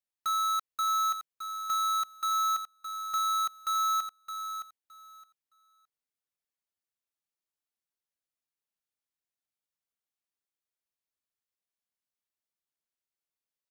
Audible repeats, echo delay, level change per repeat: 2, 616 ms, −15.0 dB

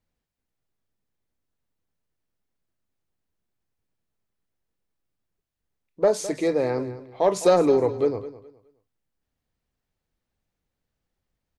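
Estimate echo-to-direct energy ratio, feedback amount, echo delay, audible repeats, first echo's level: −14.5 dB, 25%, 209 ms, 2, −15.0 dB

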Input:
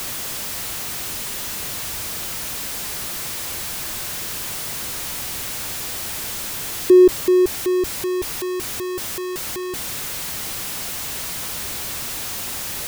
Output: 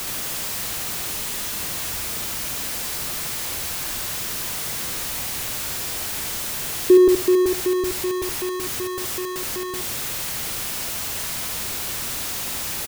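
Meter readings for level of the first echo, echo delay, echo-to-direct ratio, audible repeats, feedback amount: −4.5 dB, 73 ms, −4.5 dB, 2, 19%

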